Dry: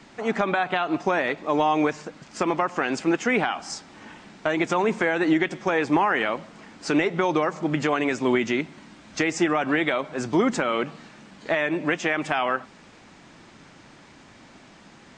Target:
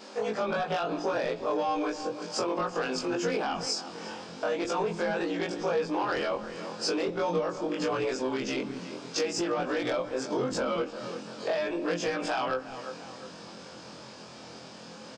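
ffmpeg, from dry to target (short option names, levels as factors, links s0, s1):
-filter_complex "[0:a]afftfilt=real='re':imag='-im':win_size=2048:overlap=0.75,highpass=110,equalizer=f=200:t=o:w=0.58:g=3,bandreject=f=50:t=h:w=6,bandreject=f=100:t=h:w=6,bandreject=f=150:t=h:w=6,bandreject=f=200:t=h:w=6,bandreject=f=250:t=h:w=6,bandreject=f=300:t=h:w=6,bandreject=f=350:t=h:w=6,asplit=2[s0][s1];[s1]adelay=349,lowpass=f=4000:p=1,volume=0.106,asplit=2[s2][s3];[s3]adelay=349,lowpass=f=4000:p=1,volume=0.41,asplit=2[s4][s5];[s5]adelay=349,lowpass=f=4000:p=1,volume=0.41[s6];[s2][s4][s6]amix=inputs=3:normalize=0[s7];[s0][s7]amix=inputs=2:normalize=0,asoftclip=type=tanh:threshold=0.0841,equalizer=f=500:t=o:w=0.33:g=9,equalizer=f=2000:t=o:w=0.33:g=-10,equalizer=f=5000:t=o:w=0.33:g=9,acompressor=threshold=0.0141:ratio=3,acrossover=split=220[s8][s9];[s8]adelay=190[s10];[s10][s9]amix=inputs=2:normalize=0,volume=2.51"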